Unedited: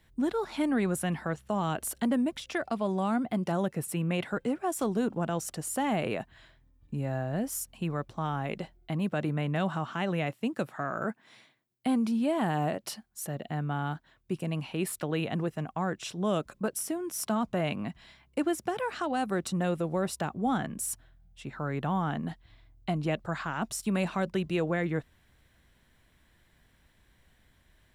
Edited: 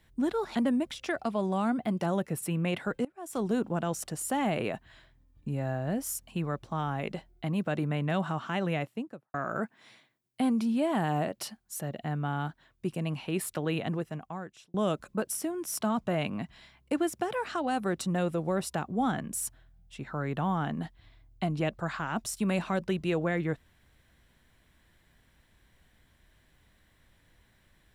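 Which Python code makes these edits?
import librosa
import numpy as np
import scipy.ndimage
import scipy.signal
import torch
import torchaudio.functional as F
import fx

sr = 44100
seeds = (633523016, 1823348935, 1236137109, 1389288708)

y = fx.studio_fade_out(x, sr, start_s=10.19, length_s=0.61)
y = fx.edit(y, sr, fx.cut(start_s=0.55, length_s=1.46),
    fx.fade_in_from(start_s=4.51, length_s=0.39, curve='qua', floor_db=-22.0),
    fx.fade_out_span(start_s=15.29, length_s=0.91), tone=tone)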